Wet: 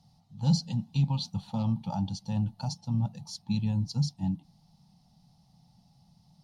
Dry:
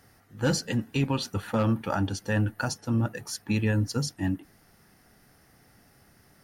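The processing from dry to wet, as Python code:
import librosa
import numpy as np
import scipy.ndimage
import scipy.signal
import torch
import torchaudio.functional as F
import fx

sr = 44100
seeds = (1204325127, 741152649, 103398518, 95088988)

y = fx.curve_eq(x, sr, hz=(100.0, 170.0, 380.0, 850.0, 1600.0, 4000.0, 13000.0), db=(0, 12, -22, 3, -27, 5, -17))
y = F.gain(torch.from_numpy(y), -4.5).numpy()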